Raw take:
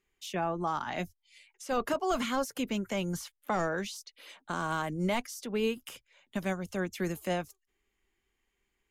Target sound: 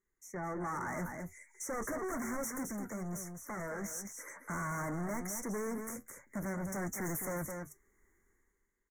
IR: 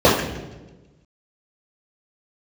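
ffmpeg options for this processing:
-filter_complex "[0:a]asettb=1/sr,asplit=3[link_01][link_02][link_03];[link_01]atrim=end=6.724[link_04];[link_02]atrim=start=6.72:end=7.25,asetpts=PTS-STARTPTS,afade=type=in:duration=0.004:curve=qsin,afade=type=out:start_time=0.526:duration=0.004:curve=qsin,highshelf=frequency=2100:gain=8[link_05];[link_03]atrim=start=7.246[link_06];[link_04][link_05]acrossfade=duration=0.004:curve1=hsin:curve2=qsin[link_07];[link_07][link_06]acrossfade=duration=0.004:curve1=qsin:curve2=hsin,dynaudnorm=framelen=110:gausssize=11:maxgain=14dB,equalizer=frequency=740:width_type=o:width=0.29:gain=-10.5,volume=24.5dB,asoftclip=hard,volume=-24.5dB,asettb=1/sr,asplit=3[link_08][link_09][link_10];[link_08]atrim=end=2.634[link_11];[link_09]atrim=start=2.63:end=3.84,asetpts=PTS-STARTPTS,afade=type=in:duration=0.004:curve=qsin,afade=type=out:start_time=1.206:duration=0.004:curve=qsin,acompressor=threshold=-44dB:ratio=1.5[link_12];[link_10]atrim=start=3.836[link_13];[link_11][link_12]acrossfade=duration=0.004:curve1=hsin:curve2=qsin[link_14];[link_14][link_13]acrossfade=duration=0.004:curve1=qsin:curve2=hsin,aecho=1:1:212:0.376,flanger=delay=5.2:depth=7.6:regen=-66:speed=0.43:shape=triangular,asoftclip=type=tanh:threshold=-33dB,asuperstop=centerf=3500:order=20:qfactor=0.98,volume=-1.5dB"

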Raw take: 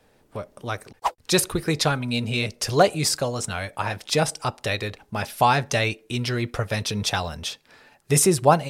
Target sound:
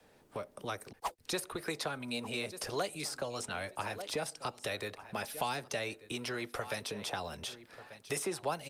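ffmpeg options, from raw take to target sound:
ffmpeg -i in.wav -filter_complex "[0:a]lowshelf=frequency=75:gain=-8,acrossover=split=230|1500[link_01][link_02][link_03];[link_01]acompressor=threshold=-41dB:ratio=5[link_04];[link_04][link_02][link_03]amix=inputs=3:normalize=0,aecho=1:1:1188|2376:0.0891|0.0134,acrossover=split=230|560|1600|5300[link_05][link_06][link_07][link_08][link_09];[link_05]acompressor=threshold=-45dB:ratio=4[link_10];[link_06]acompressor=threshold=-40dB:ratio=4[link_11];[link_07]acompressor=threshold=-38dB:ratio=4[link_12];[link_08]acompressor=threshold=-40dB:ratio=4[link_13];[link_09]acompressor=threshold=-40dB:ratio=4[link_14];[link_10][link_11][link_12][link_13][link_14]amix=inputs=5:normalize=0,volume=-3dB" -ar 48000 -c:a libopus -b:a 48k out.opus

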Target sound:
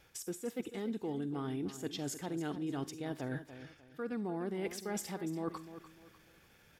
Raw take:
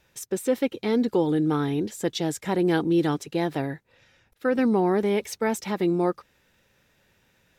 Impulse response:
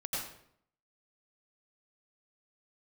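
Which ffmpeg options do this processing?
-filter_complex "[0:a]areverse,acompressor=threshold=-38dB:ratio=5,areverse,asetrate=41013,aresample=44100,aecho=1:1:355|710|1065:0.251|0.0779|0.0241,atempo=1.2,asplit=2[link_01][link_02];[link_02]aemphasis=mode=production:type=bsi[link_03];[1:a]atrim=start_sample=2205,asetrate=88200,aresample=44100[link_04];[link_03][link_04]afir=irnorm=-1:irlink=0,volume=-14.5dB[link_05];[link_01][link_05]amix=inputs=2:normalize=0"

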